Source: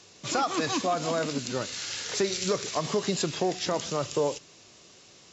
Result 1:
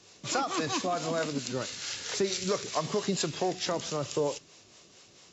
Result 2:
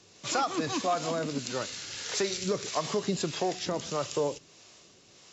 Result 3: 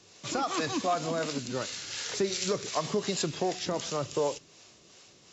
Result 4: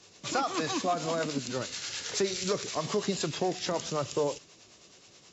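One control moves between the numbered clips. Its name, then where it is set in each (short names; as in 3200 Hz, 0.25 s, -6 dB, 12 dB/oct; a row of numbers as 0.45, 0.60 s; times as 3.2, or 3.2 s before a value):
harmonic tremolo, rate: 4.5, 1.6, 2.7, 9.4 Hz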